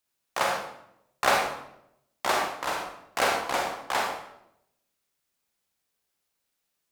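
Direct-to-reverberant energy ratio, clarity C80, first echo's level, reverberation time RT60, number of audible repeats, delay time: 0.0 dB, 6.0 dB, no echo audible, 0.80 s, no echo audible, no echo audible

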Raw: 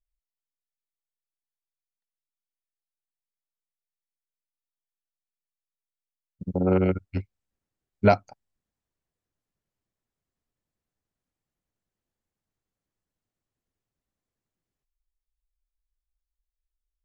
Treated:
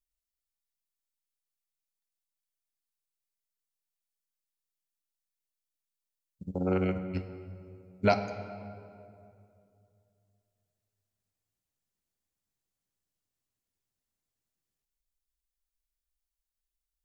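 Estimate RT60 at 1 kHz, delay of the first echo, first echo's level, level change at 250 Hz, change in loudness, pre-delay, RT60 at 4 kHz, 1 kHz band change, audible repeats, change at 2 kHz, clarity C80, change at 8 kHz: 2.4 s, no echo audible, no echo audible, −5.5 dB, −7.0 dB, 3 ms, 1.5 s, −5.0 dB, no echo audible, −3.0 dB, 10.5 dB, can't be measured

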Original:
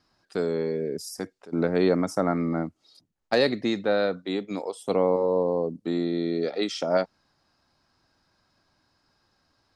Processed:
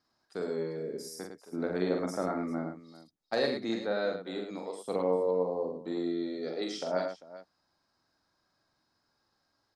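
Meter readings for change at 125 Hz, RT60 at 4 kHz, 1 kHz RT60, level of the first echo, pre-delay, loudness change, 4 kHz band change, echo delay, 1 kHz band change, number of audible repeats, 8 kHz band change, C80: −10.0 dB, no reverb audible, no reverb audible, −4.0 dB, no reverb audible, −7.0 dB, −7.0 dB, 44 ms, −6.5 dB, 3, can't be measured, no reverb audible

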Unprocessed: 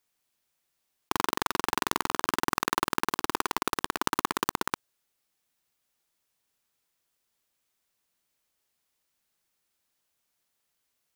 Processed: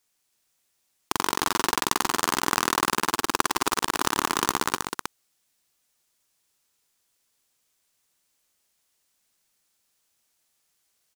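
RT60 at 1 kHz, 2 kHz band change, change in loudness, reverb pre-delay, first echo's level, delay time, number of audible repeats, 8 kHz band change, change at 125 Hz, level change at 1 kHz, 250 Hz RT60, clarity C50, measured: no reverb audible, +4.0 dB, +4.5 dB, no reverb audible, −13.5 dB, 107 ms, 3, +8.5 dB, +3.0 dB, +4.0 dB, no reverb audible, no reverb audible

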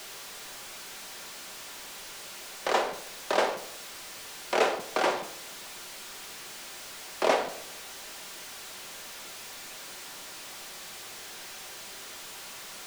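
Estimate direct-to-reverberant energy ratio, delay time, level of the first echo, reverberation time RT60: 5.5 dB, no echo audible, no echo audible, 0.75 s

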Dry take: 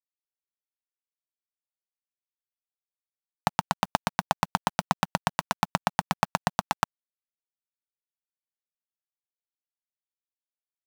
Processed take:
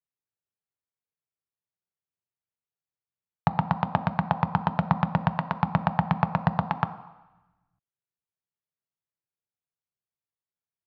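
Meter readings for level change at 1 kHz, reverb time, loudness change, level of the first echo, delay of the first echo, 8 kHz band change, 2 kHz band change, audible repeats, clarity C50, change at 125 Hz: +0.5 dB, 1.0 s, +1.5 dB, no echo audible, no echo audible, below −30 dB, −2.5 dB, no echo audible, 13.5 dB, +9.5 dB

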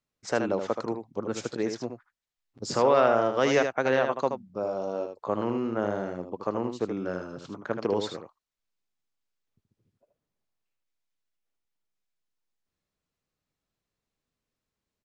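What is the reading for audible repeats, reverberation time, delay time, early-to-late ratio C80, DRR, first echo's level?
1, no reverb audible, 77 ms, no reverb audible, no reverb audible, −7.0 dB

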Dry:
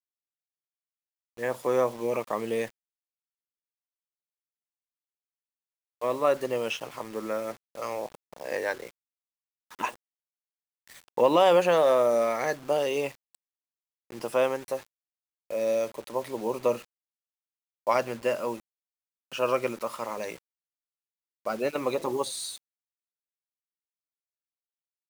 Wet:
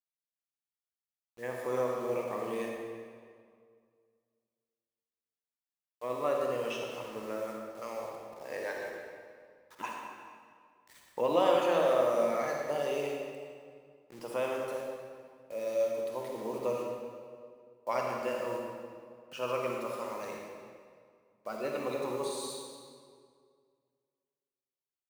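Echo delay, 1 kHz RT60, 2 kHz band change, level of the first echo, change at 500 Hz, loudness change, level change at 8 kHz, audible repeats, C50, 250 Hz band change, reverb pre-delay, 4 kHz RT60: no echo audible, 2.0 s, −6.0 dB, no echo audible, −5.5 dB, −6.0 dB, −6.5 dB, no echo audible, 0.0 dB, −5.0 dB, 40 ms, 1.5 s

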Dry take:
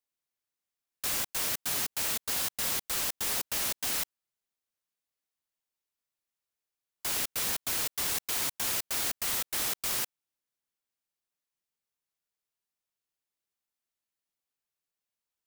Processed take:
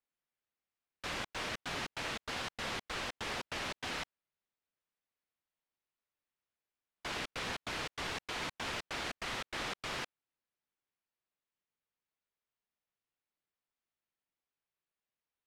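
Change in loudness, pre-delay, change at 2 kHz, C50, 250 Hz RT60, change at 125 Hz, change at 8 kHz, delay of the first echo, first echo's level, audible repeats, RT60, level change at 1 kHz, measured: −10.0 dB, no reverb audible, −1.0 dB, no reverb audible, no reverb audible, 0.0 dB, −17.5 dB, no echo audible, no echo audible, no echo audible, no reverb audible, 0.0 dB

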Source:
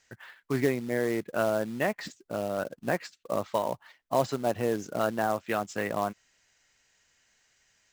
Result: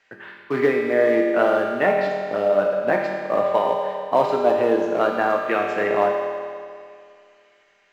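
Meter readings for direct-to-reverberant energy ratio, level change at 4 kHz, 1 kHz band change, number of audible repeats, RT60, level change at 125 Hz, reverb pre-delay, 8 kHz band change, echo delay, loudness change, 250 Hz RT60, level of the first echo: −1.0 dB, +4.5 dB, +10.0 dB, no echo audible, 2.2 s, −1.5 dB, 5 ms, can't be measured, no echo audible, +10.0 dB, 2.2 s, no echo audible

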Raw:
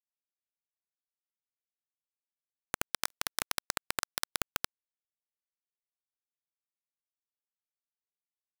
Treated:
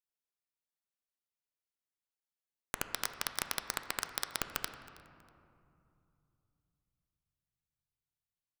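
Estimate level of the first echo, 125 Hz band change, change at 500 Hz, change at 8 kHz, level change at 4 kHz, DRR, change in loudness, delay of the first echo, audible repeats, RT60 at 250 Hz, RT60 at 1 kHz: −22.5 dB, −1.5 dB, −1.5 dB, −2.5 dB, −2.0 dB, 8.0 dB, −2.0 dB, 321 ms, 2, 3.6 s, 2.6 s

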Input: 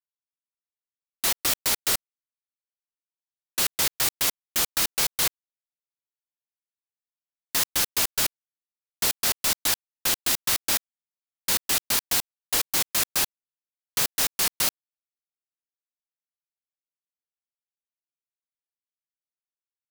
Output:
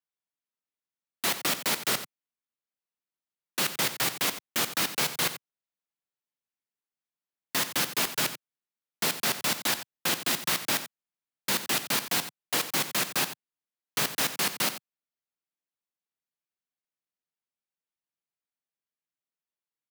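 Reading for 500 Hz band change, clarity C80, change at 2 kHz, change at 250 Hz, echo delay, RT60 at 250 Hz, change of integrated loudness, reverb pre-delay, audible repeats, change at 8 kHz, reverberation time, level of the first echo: +1.5 dB, no reverb audible, +0.5 dB, +3.5 dB, 89 ms, no reverb audible, −4.0 dB, no reverb audible, 1, −5.5 dB, no reverb audible, −12.5 dB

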